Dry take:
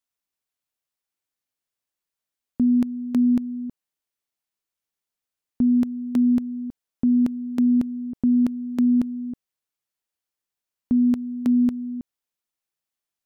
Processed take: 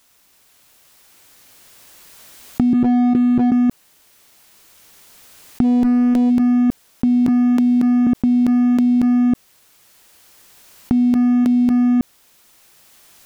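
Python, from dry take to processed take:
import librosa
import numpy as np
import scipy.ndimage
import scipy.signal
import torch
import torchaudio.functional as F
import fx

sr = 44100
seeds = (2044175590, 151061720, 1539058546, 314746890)

y = fx.recorder_agc(x, sr, target_db=-19.5, rise_db_per_s=5.9, max_gain_db=30)
y = fx.cheby_ripple(y, sr, hz=510.0, ripple_db=9, at=(2.73, 3.52))
y = fx.tube_stage(y, sr, drive_db=17.0, bias=0.3, at=(5.63, 6.29), fade=0.02)
y = fx.highpass(y, sr, hz=150.0, slope=24, at=(7.28, 8.07))
y = fx.leveller(y, sr, passes=2)
y = fx.env_flatten(y, sr, amount_pct=100)
y = F.gain(torch.from_numpy(y), -6.0).numpy()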